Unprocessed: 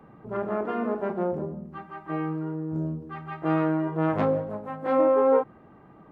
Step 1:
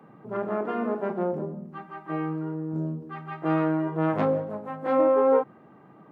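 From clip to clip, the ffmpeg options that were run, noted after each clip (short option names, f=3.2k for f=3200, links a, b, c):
-af "highpass=f=120:w=0.5412,highpass=f=120:w=1.3066"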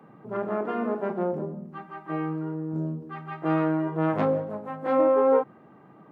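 -af anull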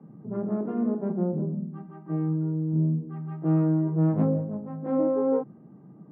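-af "bandpass=f=170:t=q:w=1.6:csg=0,volume=8dB"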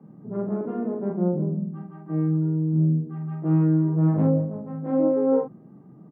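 -filter_complex "[0:a]asplit=2[a][b];[b]adelay=45,volume=-3.5dB[c];[a][c]amix=inputs=2:normalize=0"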